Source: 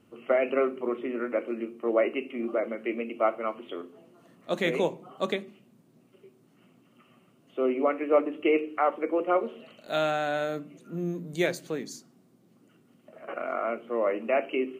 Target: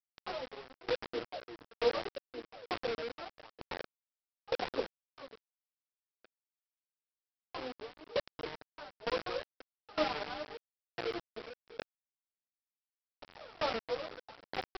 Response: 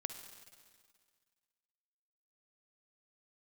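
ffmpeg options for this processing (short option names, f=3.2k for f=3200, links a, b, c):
-filter_complex "[0:a]afftdn=nr=14:nf=-45,asplit=3[a][b][c];[b]asetrate=58866,aresample=44100,atempo=0.749154,volume=-3dB[d];[c]asetrate=88200,aresample=44100,atempo=0.5,volume=-5dB[e];[a][d][e]amix=inputs=3:normalize=0,highpass=f=210:w=0.5412,highpass=f=210:w=1.3066,equalizer=f=280:t=q:w=4:g=8,equalizer=f=480:t=q:w=4:g=10,equalizer=f=1.9k:t=q:w=4:g=-6,lowpass=f=3.5k:w=0.5412,lowpass=f=3.5k:w=1.3066,acompressor=threshold=-32dB:ratio=4,acrossover=split=270 2100:gain=0.158 1 0.112[f][g][h];[f][g][h]amix=inputs=3:normalize=0,aphaser=in_gain=1:out_gain=1:delay=4.9:decay=0.79:speed=0.83:type=triangular,aresample=11025,acrusher=bits=4:mix=0:aa=0.000001,aresample=44100,aeval=exprs='val(0)*pow(10,-24*if(lt(mod(1.1*n/s,1),2*abs(1.1)/1000),1-mod(1.1*n/s,1)/(2*abs(1.1)/1000),(mod(1.1*n/s,1)-2*abs(1.1)/1000)/(1-2*abs(1.1)/1000))/20)':c=same,volume=-2.5dB"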